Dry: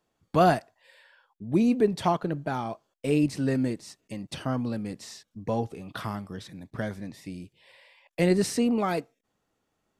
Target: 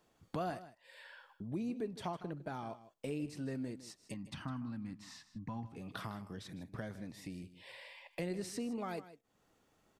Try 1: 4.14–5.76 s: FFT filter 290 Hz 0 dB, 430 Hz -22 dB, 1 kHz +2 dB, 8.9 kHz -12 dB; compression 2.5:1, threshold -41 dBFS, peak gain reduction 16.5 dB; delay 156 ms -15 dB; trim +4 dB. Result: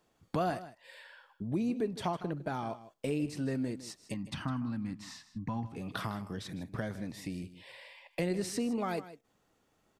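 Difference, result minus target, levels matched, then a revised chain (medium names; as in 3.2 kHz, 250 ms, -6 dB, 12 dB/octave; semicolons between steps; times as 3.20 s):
compression: peak gain reduction -6.5 dB
4.14–5.76 s: FFT filter 290 Hz 0 dB, 430 Hz -22 dB, 1 kHz +2 dB, 8.9 kHz -12 dB; compression 2.5:1, threshold -52 dBFS, peak gain reduction 23 dB; delay 156 ms -15 dB; trim +4 dB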